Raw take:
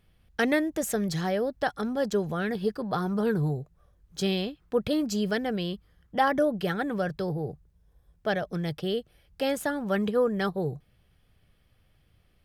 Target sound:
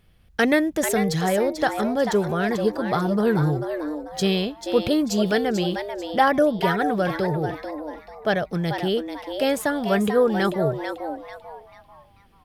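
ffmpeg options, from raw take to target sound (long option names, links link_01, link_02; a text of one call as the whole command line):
ffmpeg -i in.wav -filter_complex "[0:a]asplit=5[link_01][link_02][link_03][link_04][link_05];[link_02]adelay=441,afreqshift=150,volume=-8dB[link_06];[link_03]adelay=882,afreqshift=300,volume=-17.6dB[link_07];[link_04]adelay=1323,afreqshift=450,volume=-27.3dB[link_08];[link_05]adelay=1764,afreqshift=600,volume=-36.9dB[link_09];[link_01][link_06][link_07][link_08][link_09]amix=inputs=5:normalize=0,volume=5.5dB" out.wav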